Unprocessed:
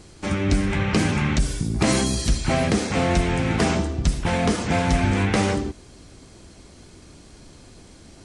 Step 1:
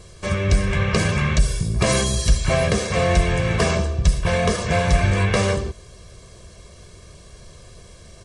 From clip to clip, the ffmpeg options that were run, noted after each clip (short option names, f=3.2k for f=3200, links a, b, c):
-af "aecho=1:1:1.8:0.85"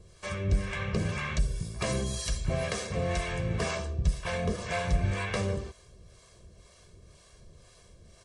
-filter_complex "[0:a]acrossover=split=540[a][b];[a]aeval=exprs='val(0)*(1-0.7/2+0.7/2*cos(2*PI*2*n/s))':c=same[c];[b]aeval=exprs='val(0)*(1-0.7/2-0.7/2*cos(2*PI*2*n/s))':c=same[d];[c][d]amix=inputs=2:normalize=0,volume=-8dB"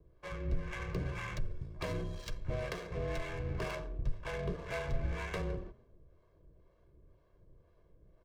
-filter_complex "[0:a]asplit=4[a][b][c][d];[b]adelay=133,afreqshift=32,volume=-22dB[e];[c]adelay=266,afreqshift=64,volume=-30.9dB[f];[d]adelay=399,afreqshift=96,volume=-39.7dB[g];[a][e][f][g]amix=inputs=4:normalize=0,afreqshift=-31,adynamicsmooth=sensitivity=7.5:basefreq=1k,volume=-6.5dB"